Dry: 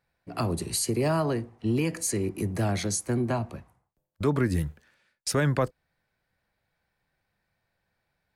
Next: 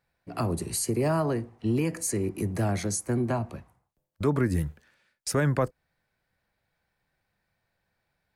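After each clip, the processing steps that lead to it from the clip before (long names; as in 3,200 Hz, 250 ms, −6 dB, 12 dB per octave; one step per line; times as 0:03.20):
dynamic equaliser 3,600 Hz, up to −7 dB, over −49 dBFS, Q 1.3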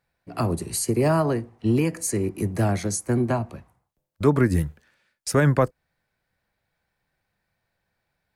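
expander for the loud parts 1.5 to 1, over −33 dBFS
level +7 dB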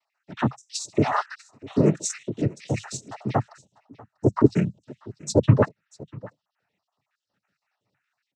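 time-frequency cells dropped at random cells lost 72%
single-tap delay 643 ms −21.5 dB
cochlear-implant simulation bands 12
level +4.5 dB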